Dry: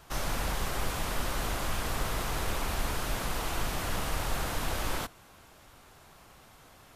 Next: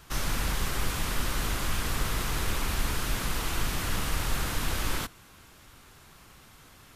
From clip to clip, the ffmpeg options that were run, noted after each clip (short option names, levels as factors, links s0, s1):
-af "equalizer=f=670:w=1.2:g=-8,volume=1.5"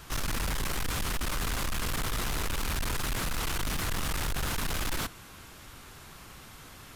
-af "asoftclip=type=tanh:threshold=0.0237,volume=1.78"